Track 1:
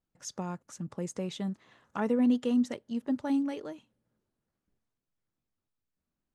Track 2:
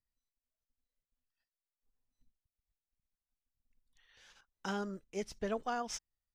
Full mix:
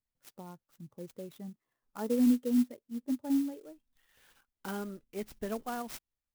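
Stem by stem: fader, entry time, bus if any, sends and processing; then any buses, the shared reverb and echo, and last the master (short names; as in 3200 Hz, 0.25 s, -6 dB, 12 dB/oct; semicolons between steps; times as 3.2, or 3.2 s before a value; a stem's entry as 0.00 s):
+1.5 dB, 0.00 s, no send, spectral expander 1.5:1
-2.0 dB, 0.00 s, no send, bell 210 Hz +9.5 dB 0.98 oct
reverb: off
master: bell 190 Hz -8 dB 0.43 oct; clock jitter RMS 0.046 ms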